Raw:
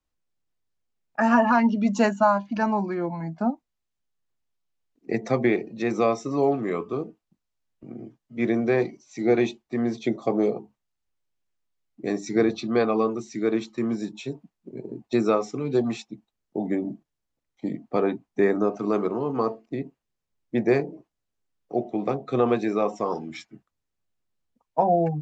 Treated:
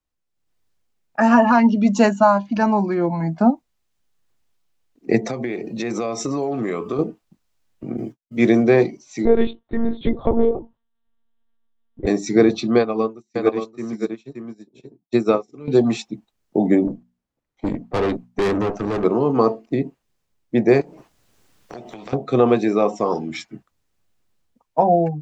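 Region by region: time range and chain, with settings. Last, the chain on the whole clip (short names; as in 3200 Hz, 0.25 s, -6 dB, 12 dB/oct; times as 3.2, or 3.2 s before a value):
5.29–6.99 high shelf 5500 Hz +7 dB + compressor, threshold -32 dBFS
7.97–8.63 expander -45 dBFS + high shelf 5400 Hz +11.5 dB
9.25–12.07 bell 2400 Hz -14 dB 0.38 oct + monotone LPC vocoder at 8 kHz 230 Hz
12.78–15.68 echo 0.575 s -3.5 dB + upward expander 2.5:1, over -41 dBFS
16.87–19.04 notches 60/120/180/240 Hz + tube stage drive 28 dB, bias 0.8 + mismatched tape noise reduction decoder only
20.81–22.13 compressor 3:1, threshold -44 dBFS + spectral compressor 2:1
whole clip: dynamic EQ 1500 Hz, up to -3 dB, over -40 dBFS, Q 0.85; AGC gain up to 14 dB; gain -2 dB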